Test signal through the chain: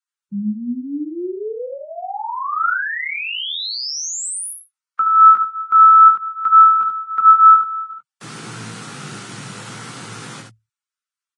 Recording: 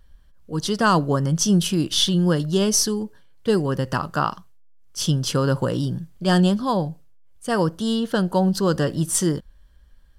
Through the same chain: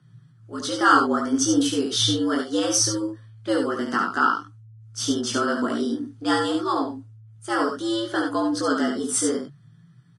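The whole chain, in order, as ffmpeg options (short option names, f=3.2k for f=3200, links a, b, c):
-filter_complex "[0:a]equalizer=f=100:t=o:w=0.33:g=4,equalizer=f=500:t=o:w=0.33:g=-10,equalizer=f=1.25k:t=o:w=0.33:g=9,afreqshift=110,asplit=2[a][b];[b]aecho=0:1:71:0.562[c];[a][c]amix=inputs=2:normalize=0,flanger=delay=18:depth=2.8:speed=0.59" -ar 22050 -c:a libvorbis -b:a 32k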